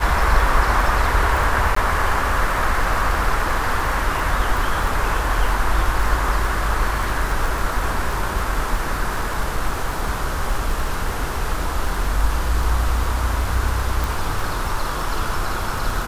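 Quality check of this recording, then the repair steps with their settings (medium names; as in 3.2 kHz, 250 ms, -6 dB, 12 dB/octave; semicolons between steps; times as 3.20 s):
crackle 22 per s -23 dBFS
1.75–1.76 s: dropout 14 ms
14.04 s: pop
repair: de-click; interpolate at 1.75 s, 14 ms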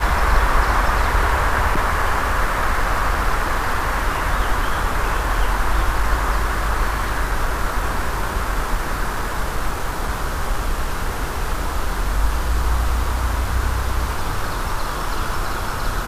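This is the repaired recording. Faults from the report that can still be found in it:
14.04 s: pop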